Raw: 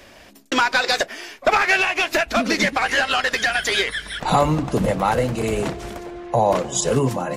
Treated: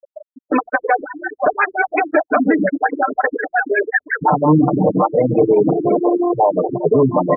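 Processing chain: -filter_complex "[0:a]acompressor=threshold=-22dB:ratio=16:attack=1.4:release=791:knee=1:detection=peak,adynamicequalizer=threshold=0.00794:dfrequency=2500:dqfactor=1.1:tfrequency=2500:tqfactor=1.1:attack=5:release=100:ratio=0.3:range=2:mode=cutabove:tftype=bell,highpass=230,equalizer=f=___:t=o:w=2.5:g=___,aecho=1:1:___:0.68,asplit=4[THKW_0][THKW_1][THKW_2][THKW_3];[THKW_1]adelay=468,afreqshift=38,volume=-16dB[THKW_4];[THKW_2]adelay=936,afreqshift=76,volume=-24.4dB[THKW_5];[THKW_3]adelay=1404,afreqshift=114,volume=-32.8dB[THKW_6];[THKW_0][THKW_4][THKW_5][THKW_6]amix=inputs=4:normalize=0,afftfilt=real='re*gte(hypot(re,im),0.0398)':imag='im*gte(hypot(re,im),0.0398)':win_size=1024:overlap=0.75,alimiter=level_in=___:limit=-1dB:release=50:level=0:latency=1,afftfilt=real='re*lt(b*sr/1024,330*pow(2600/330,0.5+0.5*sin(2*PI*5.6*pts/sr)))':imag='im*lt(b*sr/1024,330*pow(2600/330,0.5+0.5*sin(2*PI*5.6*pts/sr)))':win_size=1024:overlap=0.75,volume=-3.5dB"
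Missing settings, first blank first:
9.6k, -9.5, 6.7, 25dB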